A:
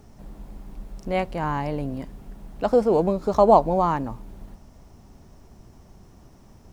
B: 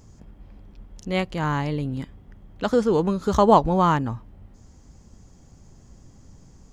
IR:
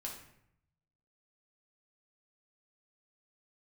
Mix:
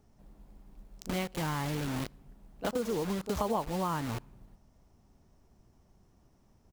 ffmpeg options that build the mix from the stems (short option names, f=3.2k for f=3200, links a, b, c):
-filter_complex "[0:a]acrusher=bits=8:mode=log:mix=0:aa=0.000001,volume=-14.5dB[a];[1:a]acrusher=bits=4:mix=0:aa=0.000001,adelay=26,volume=-1.5dB,asplit=2[b][c];[c]volume=-23.5dB[d];[2:a]atrim=start_sample=2205[e];[d][e]afir=irnorm=-1:irlink=0[f];[a][b][f]amix=inputs=3:normalize=0,acompressor=threshold=-31dB:ratio=4"